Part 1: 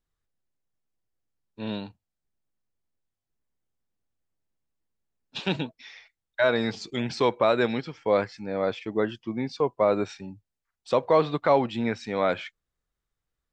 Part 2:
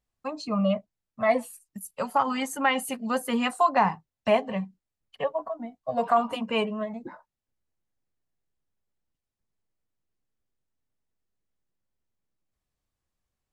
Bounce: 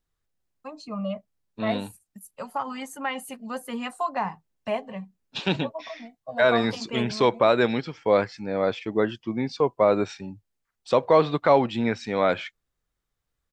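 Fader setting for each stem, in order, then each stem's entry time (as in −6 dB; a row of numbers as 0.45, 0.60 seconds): +2.5, −6.0 decibels; 0.00, 0.40 seconds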